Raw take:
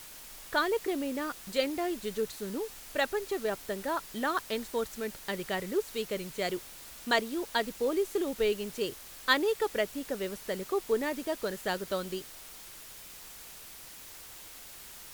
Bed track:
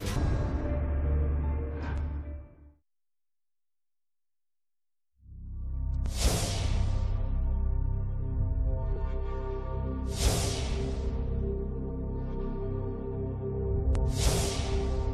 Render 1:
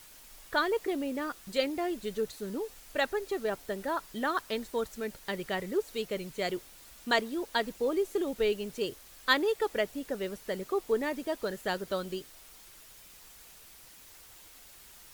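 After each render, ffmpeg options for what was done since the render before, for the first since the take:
-af "afftdn=nr=6:nf=-48"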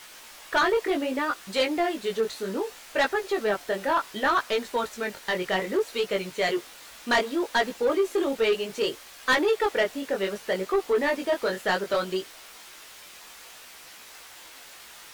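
-filter_complex "[0:a]flanger=delay=15.5:depth=6.6:speed=0.65,asplit=2[a][b];[b]highpass=f=720:p=1,volume=22dB,asoftclip=type=tanh:threshold=-12dB[c];[a][c]amix=inputs=2:normalize=0,lowpass=f=3.4k:p=1,volume=-6dB"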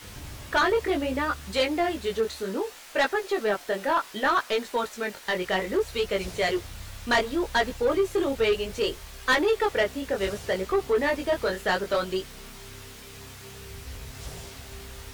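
-filter_complex "[1:a]volume=-13.5dB[a];[0:a][a]amix=inputs=2:normalize=0"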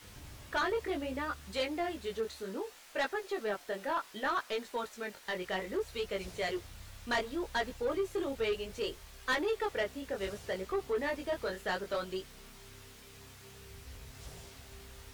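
-af "volume=-9.5dB"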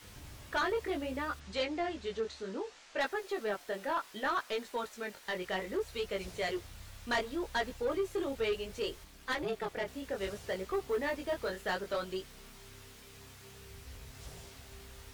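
-filter_complex "[0:a]asplit=3[a][b][c];[a]afade=t=out:st=1.39:d=0.02[d];[b]lowpass=f=7.2k:w=0.5412,lowpass=f=7.2k:w=1.3066,afade=t=in:st=1.39:d=0.02,afade=t=out:st=2.99:d=0.02[e];[c]afade=t=in:st=2.99:d=0.02[f];[d][e][f]amix=inputs=3:normalize=0,asettb=1/sr,asplit=3[g][h][i];[g]atrim=end=9.044[j];[h]atrim=start=9.04:end=9.88,asetpts=PTS-STARTPTS,afade=t=in:d=0.004:c=qsin,afade=t=out:st=0.836:d=0.004:c=qsin,tremolo=f=240:d=0.788[k];[i]atrim=start=9.876[l];[j][k]acrossfade=d=0.004:c1=hsin:c2=qsin[m];[m][l]acrossfade=d=0.004:c1=qsin:c2=hsin,asettb=1/sr,asplit=3[n][o][p];[n]atrim=end=10.414[q];[o]atrim=start=10.41:end=11.74,asetpts=PTS-STARTPTS,afade=t=in:d=0.004:c=qsin,afade=t=out:st=1.326:d=0.004:c=qsin,acrusher=bits=7:mode=log:mix=0:aa=0.000001[r];[p]atrim=start=11.736[s];[q][r]acrossfade=d=0.004:c1=hsin:c2=qsin[t];[t][s]acrossfade=d=0.004:c1=qsin:c2=hsin"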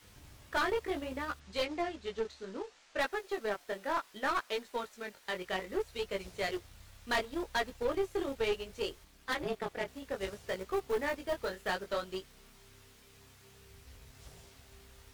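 -af "aeval=exprs='0.0708*(cos(1*acos(clip(val(0)/0.0708,-1,1)))-cos(1*PI/2))+0.02*(cos(2*acos(clip(val(0)/0.0708,-1,1)))-cos(2*PI/2))+0.00501*(cos(7*acos(clip(val(0)/0.0708,-1,1)))-cos(7*PI/2))+0.002*(cos(8*acos(clip(val(0)/0.0708,-1,1)))-cos(8*PI/2))':c=same"

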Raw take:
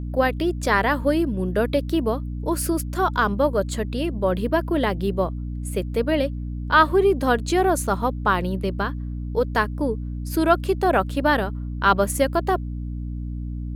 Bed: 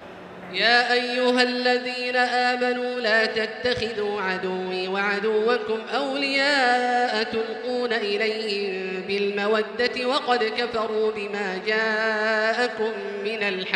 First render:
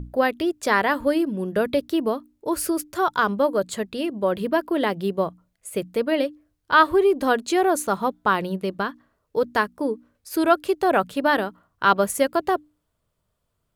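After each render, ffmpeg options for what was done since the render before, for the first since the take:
-af "bandreject=f=60:t=h:w=6,bandreject=f=120:t=h:w=6,bandreject=f=180:t=h:w=6,bandreject=f=240:t=h:w=6,bandreject=f=300:t=h:w=6"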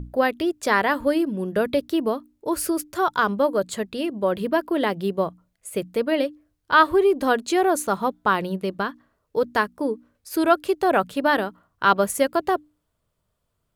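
-af anull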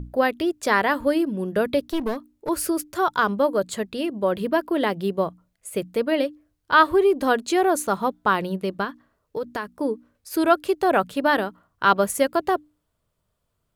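-filter_complex "[0:a]asettb=1/sr,asplit=3[a][b][c];[a]atrim=end=1.884[d];[b]atrim=start=1.88:end=2.49,asetpts=PTS-STARTPTS,afade=t=in:d=0.004:c=qsin,afade=t=out:st=0.606:d=0.004:c=qsin,aeval=exprs='clip(val(0),-1,0.0422)':c=same[e];[c]atrim=start=2.486[f];[d][e]acrossfade=d=0.004:c1=hsin:c2=qsin[g];[g][f]acrossfade=d=0.004:c1=qsin:c2=hsin,asettb=1/sr,asplit=3[h][i][j];[h]atrim=end=8.844[k];[i]atrim=start=8.84:end=9.75,asetpts=PTS-STARTPTS,afade=t=in:d=0.004:c=qsin,afade=t=out:st=0.906:d=0.004:c=qsin,acompressor=threshold=-24dB:ratio=5:attack=3.2:release=140:knee=1:detection=peak[l];[j]atrim=start=9.746[m];[k][l]acrossfade=d=0.004:c1=hsin:c2=qsin[n];[n][m]acrossfade=d=0.004:c1=qsin:c2=hsin"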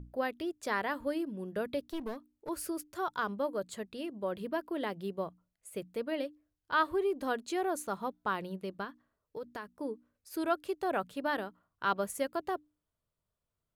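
-af "volume=-13dB"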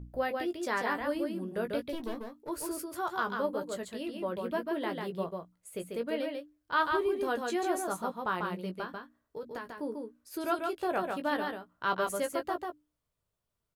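-filter_complex "[0:a]asplit=2[a][b];[b]adelay=17,volume=-7dB[c];[a][c]amix=inputs=2:normalize=0,aecho=1:1:143:0.631"

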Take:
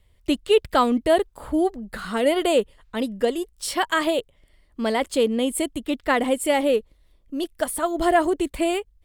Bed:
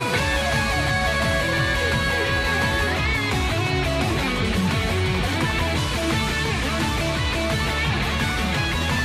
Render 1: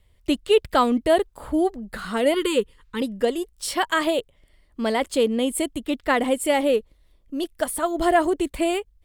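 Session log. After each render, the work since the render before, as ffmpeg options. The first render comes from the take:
-filter_complex "[0:a]asettb=1/sr,asplit=3[a][b][c];[a]atrim=end=2.344[d];[b]atrim=start=2.34:end=3.02,asetpts=PTS-STARTPTS,afade=t=in:d=0.004:c=qsin,afade=t=out:st=0.676:d=0.004:c=qsin,asuperstop=centerf=680:order=8:qfactor=1.9[e];[c]atrim=start=3.016[f];[d][e]acrossfade=d=0.004:c1=hsin:c2=qsin[g];[g][f]acrossfade=d=0.004:c1=qsin:c2=hsin"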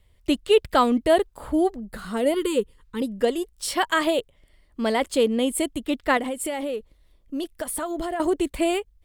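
-filter_complex "[0:a]asettb=1/sr,asplit=3[a][b][c];[a]atrim=end=1.804[d];[b]atrim=start=1.8:end=3.18,asetpts=PTS-STARTPTS,afade=t=in:d=0.004:c=qsin,afade=t=out:st=1.376:d=0.004:c=qsin,equalizer=f=2.2k:w=0.41:g=-6.5[e];[c]atrim=start=3.176[f];[d][e]acrossfade=d=0.004:c1=hsin:c2=qsin[g];[g][f]acrossfade=d=0.004:c1=qsin:c2=hsin,asettb=1/sr,asplit=3[h][i][j];[h]atrim=end=6.174[k];[i]atrim=start=6.17:end=8.2,asetpts=PTS-STARTPTS,afade=t=in:d=0.004:c=qsin,afade=t=out:st=2.026:d=0.004:c=qsin,acompressor=threshold=-24dB:ratio=10:attack=3.2:release=140:knee=1:detection=peak[l];[j]atrim=start=8.196[m];[k][l]acrossfade=d=0.004:c1=hsin:c2=qsin[n];[n][m]acrossfade=d=0.004:c1=qsin:c2=hsin"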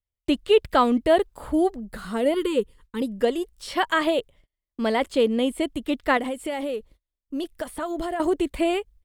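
-filter_complex "[0:a]agate=range=-31dB:threshold=-49dB:ratio=16:detection=peak,acrossover=split=4300[a][b];[b]acompressor=threshold=-43dB:ratio=4:attack=1:release=60[c];[a][c]amix=inputs=2:normalize=0"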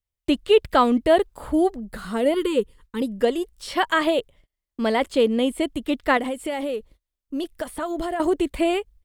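-af "volume=1.5dB"

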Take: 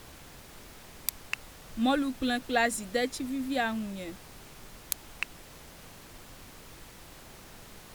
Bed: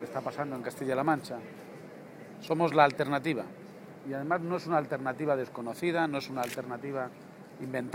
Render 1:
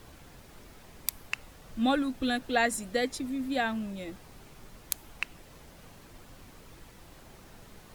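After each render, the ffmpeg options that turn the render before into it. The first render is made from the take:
-af "afftdn=nr=6:nf=-51"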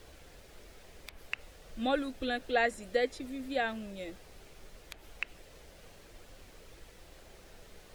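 -filter_complex "[0:a]acrossover=split=3300[a][b];[b]acompressor=threshold=-46dB:ratio=4:attack=1:release=60[c];[a][c]amix=inputs=2:normalize=0,equalizer=f=125:t=o:w=1:g=-8,equalizer=f=250:t=o:w=1:g=-7,equalizer=f=500:t=o:w=1:g=4,equalizer=f=1k:t=o:w=1:g=-7,equalizer=f=16k:t=o:w=1:g=-6"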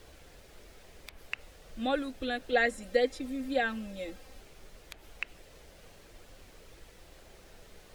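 -filter_complex "[0:a]asettb=1/sr,asplit=3[a][b][c];[a]atrim=end=2.524[d];[b]atrim=start=2.52:end=4.41,asetpts=PTS-STARTPTS,afade=t=in:d=0.004:c=qsin,afade=t=out:st=1.886:d=0.004:c=qsin,aecho=1:1:3.8:0.65,atrim=end_sample=83349[e];[c]atrim=start=4.406[f];[d][e]acrossfade=d=0.004:c1=hsin:c2=qsin[g];[g][f]acrossfade=d=0.004:c1=qsin:c2=hsin"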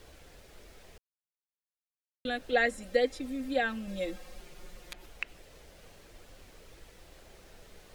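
-filter_complex "[0:a]asettb=1/sr,asplit=3[a][b][c];[a]atrim=end=3.874[d];[b]atrim=start=3.87:end=5.06,asetpts=PTS-STARTPTS,afade=t=in:d=0.004:c=qsin,afade=t=out:st=1.186:d=0.004:c=qsin,aecho=1:1:5.6:0.93,atrim=end_sample=52479[e];[c]atrim=start=5.056[f];[d][e]acrossfade=d=0.004:c1=hsin:c2=qsin[g];[g][f]acrossfade=d=0.004:c1=qsin:c2=hsin,asplit=3[h][i][j];[h]atrim=end=0.98,asetpts=PTS-STARTPTS,afade=t=out:st=0.976:d=0.004:c=hsin[k];[i]atrim=start=0.98:end=2.25,asetpts=PTS-STARTPTS,volume=0[l];[j]atrim=start=2.25,asetpts=PTS-STARTPTS,afade=t=in:d=0.004:c=hsin[m];[k][l][m]concat=n=3:v=0:a=1"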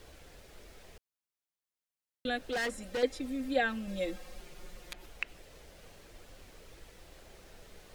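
-filter_complex "[0:a]asettb=1/sr,asplit=3[a][b][c];[a]atrim=end=2.474[d];[b]atrim=start=2.47:end=3.03,asetpts=PTS-STARTPTS,afade=t=in:d=0.004:c=qsin,afade=t=out:st=0.556:d=0.004:c=qsin,asoftclip=type=hard:threshold=-31dB[e];[c]atrim=start=3.026[f];[d][e]acrossfade=d=0.004:c1=hsin:c2=qsin[g];[g][f]acrossfade=d=0.004:c1=qsin:c2=hsin"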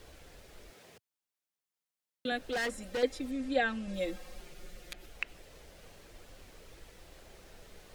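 -filter_complex "[0:a]asettb=1/sr,asplit=3[a][b][c];[a]atrim=end=0.704[d];[b]atrim=start=0.7:end=2.32,asetpts=PTS-STARTPTS,afade=t=in:d=0.004:c=qsin,afade=t=out:st=1.616:d=0.004:c=qsin,highpass=f=110:w=0.5412,highpass=f=110:w=1.3066[e];[c]atrim=start=2.316[f];[d][e]acrossfade=d=0.004:c1=hsin:c2=qsin[g];[g][f]acrossfade=d=0.004:c1=qsin:c2=hsin,asettb=1/sr,asplit=3[h][i][j];[h]atrim=end=3.314[k];[i]atrim=start=3.31:end=3.94,asetpts=PTS-STARTPTS,afade=t=in:d=0.004:c=qsin,afade=t=out:st=0.626:d=0.004:c=qsin,lowpass=f=9.5k:w=0.5412,lowpass=f=9.5k:w=1.3066[l];[j]atrim=start=3.936[m];[k][l]acrossfade=d=0.004:c1=hsin:c2=qsin[n];[n][m]acrossfade=d=0.004:c1=qsin:c2=hsin,asettb=1/sr,asplit=3[o][p][q];[o]atrim=end=4.524[r];[p]atrim=start=4.52:end=5.14,asetpts=PTS-STARTPTS,afade=t=in:d=0.004:c=qsin,afade=t=out:st=0.616:d=0.004:c=qsin,equalizer=f=980:w=5.1:g=-11.5[s];[q]atrim=start=5.136[t];[r][s]acrossfade=d=0.004:c1=hsin:c2=qsin[u];[u][t]acrossfade=d=0.004:c1=qsin:c2=hsin"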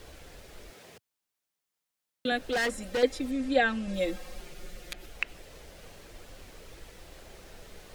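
-af "volume=5dB"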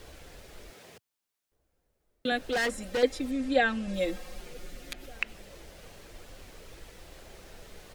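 -filter_complex "[0:a]asplit=2[a][b];[b]adelay=1516,volume=-26dB,highshelf=f=4k:g=-34.1[c];[a][c]amix=inputs=2:normalize=0"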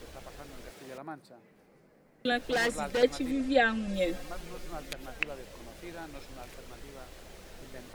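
-filter_complex "[1:a]volume=-15dB[a];[0:a][a]amix=inputs=2:normalize=0"

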